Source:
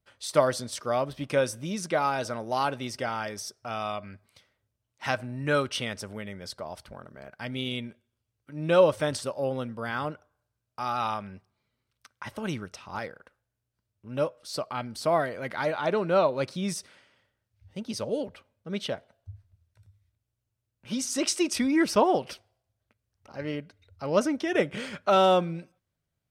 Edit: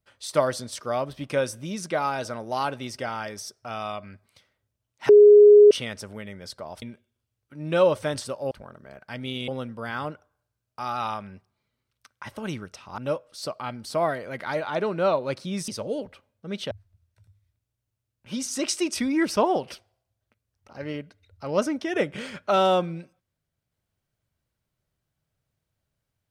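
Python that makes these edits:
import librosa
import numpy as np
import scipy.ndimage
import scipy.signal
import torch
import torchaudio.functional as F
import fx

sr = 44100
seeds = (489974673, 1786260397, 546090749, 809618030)

y = fx.edit(x, sr, fx.bleep(start_s=5.09, length_s=0.62, hz=415.0, db=-8.0),
    fx.move(start_s=6.82, length_s=0.97, to_s=9.48),
    fx.cut(start_s=12.98, length_s=1.11),
    fx.cut(start_s=16.79, length_s=1.11),
    fx.cut(start_s=18.93, length_s=0.37), tone=tone)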